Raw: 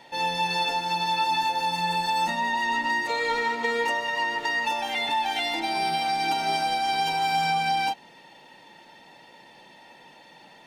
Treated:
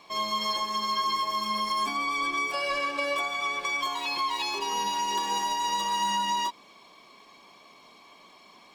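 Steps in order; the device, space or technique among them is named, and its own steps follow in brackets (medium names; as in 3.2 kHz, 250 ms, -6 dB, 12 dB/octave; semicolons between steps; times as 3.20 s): nightcore (tape speed +22%); trim -3 dB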